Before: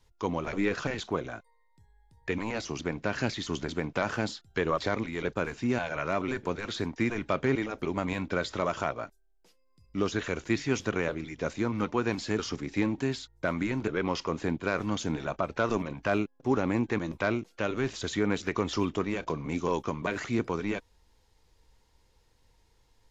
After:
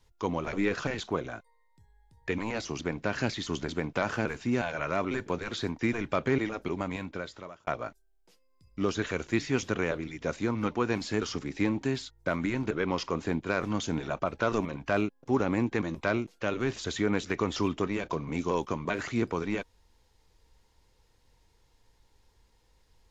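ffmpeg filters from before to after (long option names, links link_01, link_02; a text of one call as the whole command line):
ffmpeg -i in.wav -filter_complex "[0:a]asplit=3[link_01][link_02][link_03];[link_01]atrim=end=4.252[link_04];[link_02]atrim=start=5.418:end=8.84,asetpts=PTS-STARTPTS,afade=type=out:start_time=2.332:duration=1.09[link_05];[link_03]atrim=start=8.84,asetpts=PTS-STARTPTS,afade=type=in:duration=0.004:curve=hsin[link_06];[link_05][link_06]concat=n=2:v=0:a=1[link_07];[link_04][link_07]acrossfade=duration=0.004:curve1=hsin:curve2=hsin" out.wav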